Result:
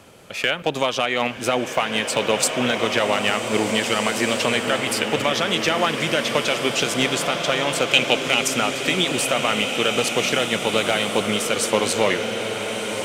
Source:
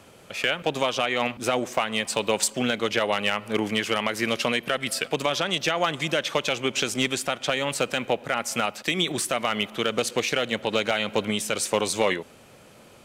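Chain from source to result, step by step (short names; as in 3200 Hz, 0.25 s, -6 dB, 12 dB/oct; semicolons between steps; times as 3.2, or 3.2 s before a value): 7.93–8.48 resonant high shelf 2100 Hz +7 dB, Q 3; bloom reverb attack 1.9 s, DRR 3.5 dB; gain +3 dB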